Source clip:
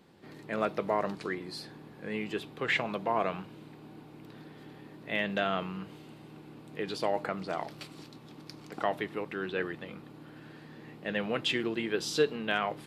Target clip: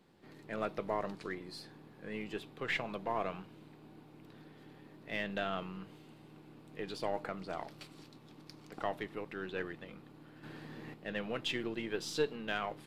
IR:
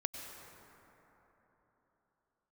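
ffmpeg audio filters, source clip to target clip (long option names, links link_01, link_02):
-filter_complex "[0:a]aeval=exprs='if(lt(val(0),0),0.708*val(0),val(0))':channel_layout=same,asettb=1/sr,asplit=3[link_01][link_02][link_03];[link_01]atrim=end=10.434[link_04];[link_02]atrim=start=10.43:end=10.94,asetpts=PTS-STARTPTS,afade=type=in:duration=0.004:curve=qsin,afade=type=out:start_time=0.506:duration=0.004:curve=qsin,acontrast=88[link_05];[link_03]atrim=start=10.936[link_06];[link_04][link_05]acrossfade=duration=0.004:curve1=hsin:curve2=qsin[link_07];[link_07][link_06]acrossfade=duration=0.004:curve1=qsin:curve2=hsin,volume=-5dB"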